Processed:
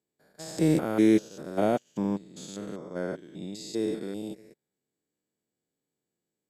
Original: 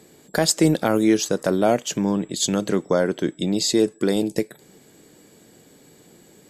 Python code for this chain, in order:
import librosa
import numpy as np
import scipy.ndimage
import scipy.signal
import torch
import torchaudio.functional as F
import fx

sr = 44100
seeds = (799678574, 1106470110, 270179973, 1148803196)

y = fx.spec_steps(x, sr, hold_ms=200)
y = fx.upward_expand(y, sr, threshold_db=-40.0, expansion=2.5)